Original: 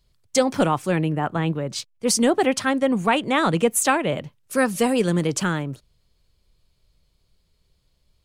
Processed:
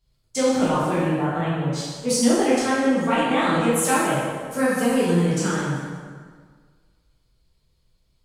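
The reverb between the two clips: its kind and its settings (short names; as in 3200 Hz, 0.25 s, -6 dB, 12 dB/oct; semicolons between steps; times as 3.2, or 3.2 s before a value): plate-style reverb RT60 1.7 s, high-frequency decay 0.7×, DRR -9 dB; gain -10 dB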